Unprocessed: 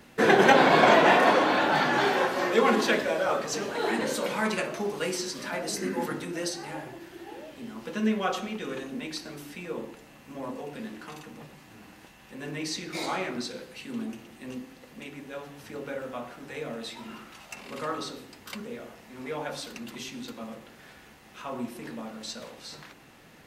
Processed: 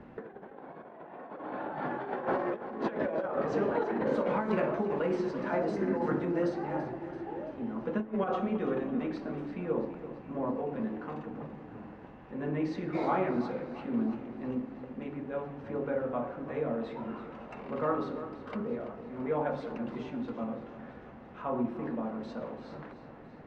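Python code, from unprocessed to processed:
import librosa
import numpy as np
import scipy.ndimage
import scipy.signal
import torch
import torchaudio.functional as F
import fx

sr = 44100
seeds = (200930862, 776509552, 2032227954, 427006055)

p1 = scipy.signal.sosfilt(scipy.signal.butter(2, 1100.0, 'lowpass', fs=sr, output='sos'), x)
p2 = fx.over_compress(p1, sr, threshold_db=-31.0, ratio=-0.5)
y = p2 + fx.echo_feedback(p2, sr, ms=335, feedback_pct=59, wet_db=-13, dry=0)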